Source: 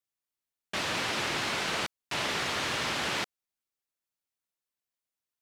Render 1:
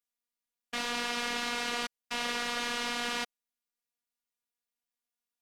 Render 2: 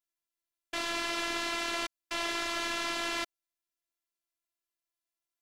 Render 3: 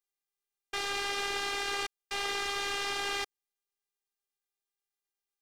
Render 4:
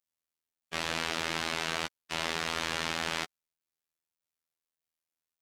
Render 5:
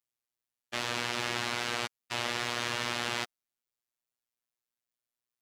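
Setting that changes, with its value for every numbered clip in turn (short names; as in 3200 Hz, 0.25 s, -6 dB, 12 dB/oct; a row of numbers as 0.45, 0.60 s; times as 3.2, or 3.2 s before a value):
robotiser, frequency: 240, 340, 400, 82, 120 Hz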